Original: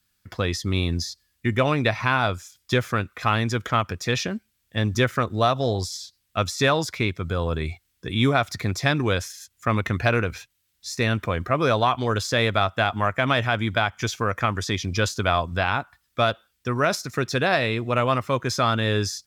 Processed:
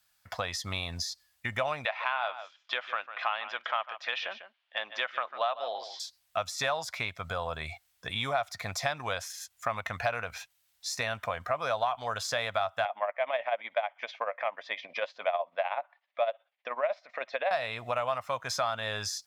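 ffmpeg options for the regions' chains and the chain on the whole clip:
-filter_complex "[0:a]asettb=1/sr,asplit=3[s0][s1][s2];[s0]atrim=end=1.854[s3];[s1]atrim=start=1.85:end=6,asetpts=PTS-STARTPTS,afade=t=in:d=0.004:c=qsin,afade=t=out:st=4.146:d=0.004:c=qsin,highpass=f=370:w=0.5412,highpass=f=370:w=1.3066,equalizer=f=450:t=q:w=4:g=-6,equalizer=f=680:t=q:w=4:g=-4,equalizer=f=3000:t=q:w=4:g=6,lowpass=f=3600:w=0.5412,lowpass=f=3600:w=1.3066,aecho=1:1:148:0.168,atrim=end_sample=183015[s4];[s2]atrim=start=5.996[s5];[s3][s4]acrossfade=d=0.004:c1=hsin:c2=qsin[s6];[s6][s5]acrossfade=d=0.004:c1=qsin:c2=hsin,asettb=1/sr,asplit=3[s7][s8][s9];[s7]atrim=end=12.854[s10];[s8]atrim=start=12.85:end=17.51,asetpts=PTS-STARTPTS,afade=t=in:d=0.004:c=qsin,afade=t=out:st=4.656:d=0.004:c=qsin,tremolo=f=16:d=0.66,highpass=f=300:w=0.5412,highpass=f=300:w=1.3066,equalizer=f=380:t=q:w=4:g=-4,equalizer=f=570:t=q:w=4:g=9,equalizer=f=1400:t=q:w=4:g=-8,equalizer=f=2100:t=q:w=4:g=6,lowpass=f=3200:w=0.5412,lowpass=f=3200:w=1.3066[s11];[s9]atrim=start=17.506[s12];[s10][s11]acrossfade=d=0.004:c1=hsin:c2=qsin[s13];[s13][s12]acrossfade=d=0.004:c1=qsin:c2=hsin,lowshelf=f=490:t=q:w=3:g=-11,acompressor=threshold=0.0251:ratio=2.5"

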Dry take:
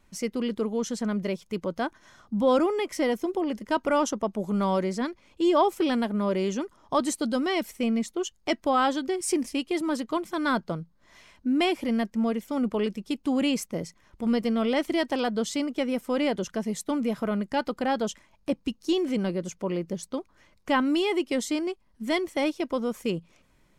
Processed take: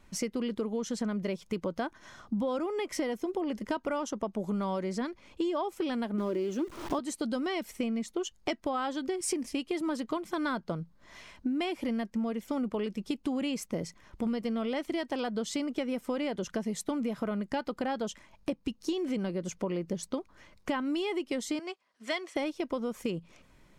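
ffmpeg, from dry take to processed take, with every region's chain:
-filter_complex "[0:a]asettb=1/sr,asplit=3[s0][s1][s2];[s0]atrim=end=6.184[s3];[s1]atrim=start=6.18:end=6.99,asetpts=PTS-STARTPTS,afade=t=in:d=0.004:c=qsin,afade=t=out:st=0.806:d=0.004:c=qsin,aeval=exprs='val(0)+0.5*0.0168*sgn(val(0))':c=same,equalizer=f=340:w=3.6:g=14.5[s4];[s2]atrim=start=6.986[s5];[s3][s4]acrossfade=d=0.004:c1=hsin:c2=qsin[s6];[s6][s5]acrossfade=d=0.004:c1=qsin:c2=hsin,asettb=1/sr,asplit=3[s7][s8][s9];[s7]atrim=end=21.594[s10];[s8]atrim=start=21.59:end=22.36,asetpts=PTS-STARTPTS,afade=t=in:d=0.004:c=qsin,afade=t=out:st=0.766:d=0.004:c=qsin,highpass=660,lowpass=7700,bandreject=f=890:w=6.9[s11];[s9]atrim=start=22.356[s12];[s10][s11]acrossfade=d=0.004:c1=hsin:c2=qsin[s13];[s13][s12]acrossfade=d=0.004:c1=qsin:c2=hsin,highshelf=f=8600:g=-5,acompressor=threshold=0.0251:ratio=12,volume=1.5"

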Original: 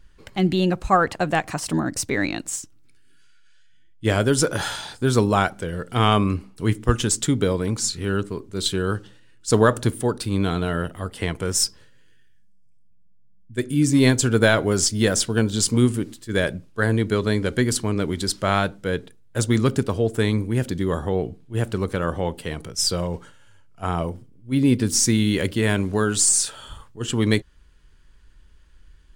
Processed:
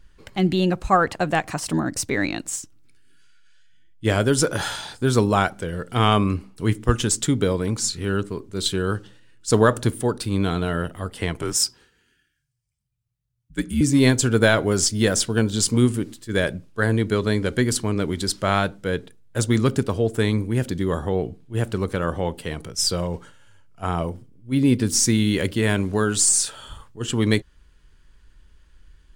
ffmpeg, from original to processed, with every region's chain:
-filter_complex "[0:a]asettb=1/sr,asplit=3[s0][s1][s2];[s0]atrim=end=11.424[s3];[s1]atrim=start=11.42:end=13.81,asetpts=PTS-STARTPTS,afade=t=in:d=0.004:c=qsin,afade=t=out:st=2.386:d=0.004:c=qsin,highpass=160,afreqshift=-71[s4];[s2]atrim=start=13.806[s5];[s3][s4]acrossfade=d=0.004:c1=hsin:c2=qsin[s6];[s6][s5]acrossfade=d=0.004:c1=qsin:c2=hsin"

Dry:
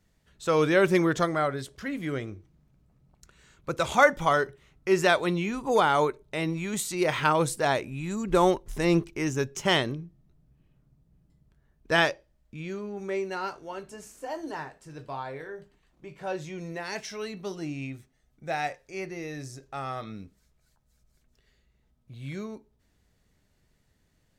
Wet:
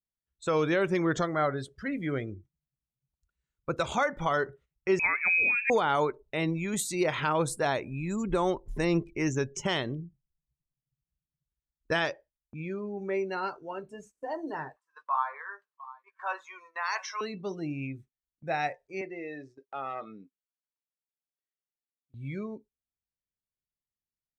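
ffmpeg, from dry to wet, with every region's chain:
-filter_complex "[0:a]asettb=1/sr,asplit=3[s0][s1][s2];[s0]atrim=end=4.994[s3];[s1]atrim=start=4.99:end=5.7,asetpts=PTS-STARTPTS,afade=t=in:d=0.004:c=qsin,afade=t=out:st=0.706:d=0.004:c=qsin,lowshelf=f=290:g=8.5,lowpass=f=2300:t=q:w=0.5098,lowpass=f=2300:t=q:w=0.6013,lowpass=f=2300:t=q:w=0.9,lowpass=f=2300:t=q:w=2.563,afreqshift=-2700[s4];[s2]atrim=start=5.696[s5];[s3][s4]acrossfade=d=0.004:c1=hsin:c2=qsin[s6];[s6][s5]acrossfade=d=0.004:c1=qsin:c2=hsin,asettb=1/sr,asplit=3[s7][s8][s9];[s7]atrim=end=14.764[s10];[s8]atrim=start=14.76:end=17.21,asetpts=PTS-STARTPTS,afade=t=in:d=0.004:c=qsin,afade=t=out:st=2.446:d=0.004:c=qsin,highpass=f=1100:t=q:w=5.8,aecho=1:1:695:0.141,atrim=end_sample=108045[s11];[s9]atrim=start=17.206[s12];[s10][s11]acrossfade=d=0.004:c1=hsin:c2=qsin[s13];[s13][s12]acrossfade=d=0.004:c1=qsin:c2=hsin,asettb=1/sr,asplit=3[s14][s15][s16];[s14]atrim=end=19.014[s17];[s15]atrim=start=19.01:end=22.14,asetpts=PTS-STARTPTS,afade=t=in:d=0.004:c=qsin,afade=t=out:st=3.126:d=0.004:c=qsin,aeval=exprs='0.0376*(abs(mod(val(0)/0.0376+3,4)-2)-1)':c=same,highpass=300,lowpass=4100[s18];[s16]atrim=start=22.136[s19];[s17][s18]acrossfade=d=0.004:c1=hsin:c2=qsin[s20];[s20][s19]acrossfade=d=0.004:c1=qsin:c2=hsin,afftdn=nr=20:nf=-43,alimiter=limit=0.15:level=0:latency=1:release=226,agate=range=0.2:threshold=0.00224:ratio=16:detection=peak"

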